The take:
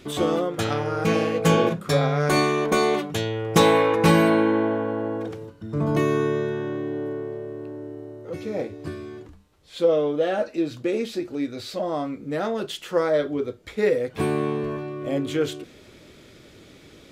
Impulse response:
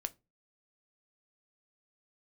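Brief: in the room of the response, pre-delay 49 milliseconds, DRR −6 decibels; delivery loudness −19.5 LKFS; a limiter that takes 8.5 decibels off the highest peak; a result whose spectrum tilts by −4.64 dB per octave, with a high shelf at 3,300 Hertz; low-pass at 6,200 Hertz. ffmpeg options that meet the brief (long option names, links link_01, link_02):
-filter_complex "[0:a]lowpass=6200,highshelf=frequency=3300:gain=7.5,alimiter=limit=-11dB:level=0:latency=1,asplit=2[link_01][link_02];[1:a]atrim=start_sample=2205,adelay=49[link_03];[link_02][link_03]afir=irnorm=-1:irlink=0,volume=7dB[link_04];[link_01][link_04]amix=inputs=2:normalize=0,volume=-2.5dB"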